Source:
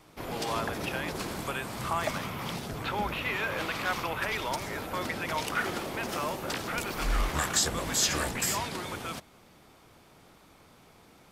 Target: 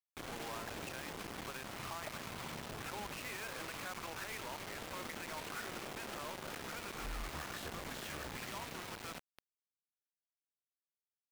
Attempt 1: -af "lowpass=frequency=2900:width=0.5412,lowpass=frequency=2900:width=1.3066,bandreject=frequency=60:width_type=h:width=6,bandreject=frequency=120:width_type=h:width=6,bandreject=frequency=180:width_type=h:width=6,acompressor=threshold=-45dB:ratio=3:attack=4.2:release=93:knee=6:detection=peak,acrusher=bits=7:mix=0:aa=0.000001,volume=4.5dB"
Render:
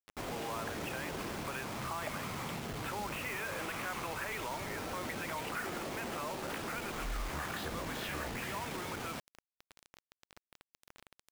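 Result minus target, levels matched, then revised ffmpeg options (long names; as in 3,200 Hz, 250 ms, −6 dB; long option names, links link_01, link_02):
downward compressor: peak gain reduction −6 dB
-af "lowpass=frequency=2900:width=0.5412,lowpass=frequency=2900:width=1.3066,bandreject=frequency=60:width_type=h:width=6,bandreject=frequency=120:width_type=h:width=6,bandreject=frequency=180:width_type=h:width=6,acompressor=threshold=-54dB:ratio=3:attack=4.2:release=93:knee=6:detection=peak,acrusher=bits=7:mix=0:aa=0.000001,volume=4.5dB"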